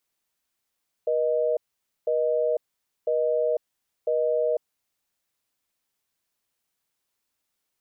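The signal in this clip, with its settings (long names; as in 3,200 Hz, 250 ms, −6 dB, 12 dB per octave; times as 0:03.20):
call progress tone busy tone, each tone −23.5 dBFS 3.96 s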